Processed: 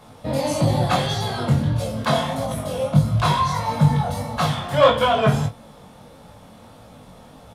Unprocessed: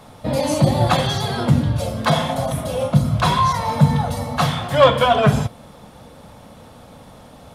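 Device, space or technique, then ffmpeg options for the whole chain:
double-tracked vocal: -filter_complex "[0:a]asplit=2[link_01][link_02];[link_02]adelay=27,volume=-9dB[link_03];[link_01][link_03]amix=inputs=2:normalize=0,flanger=delay=17.5:depth=5.2:speed=1.6"

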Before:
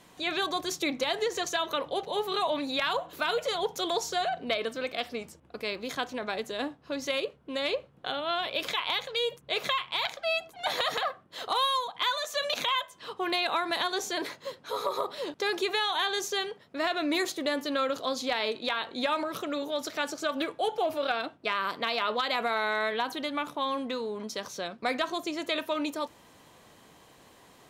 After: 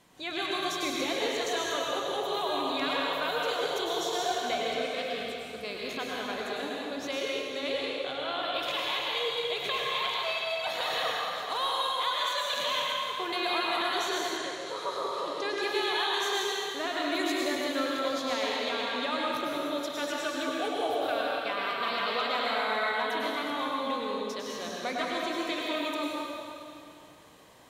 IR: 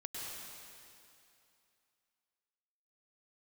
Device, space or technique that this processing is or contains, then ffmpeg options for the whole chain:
stairwell: -filter_complex "[1:a]atrim=start_sample=2205[link_01];[0:a][link_01]afir=irnorm=-1:irlink=0,asettb=1/sr,asplit=3[link_02][link_03][link_04];[link_02]atrim=end=14.374[link_05];[link_03]atrim=start=14.37:end=15.62,asetpts=PTS-STARTPTS,afade=type=in:duration=0.004:curve=qsin,afade=type=out:start_time=1.246:duration=0.004:curve=qsin,lowpass=frequency=10000:width=0.5412,lowpass=frequency=10000:width=1.3066[link_06];[link_04]atrim=start=15.616[link_07];[link_05][link_06]acrossfade=duration=0.004:curve1=hsin:curve2=qsin[link_08];[link_08][link_07]acrossfade=duration=0.004:curve1=qsin:curve2=hsin"

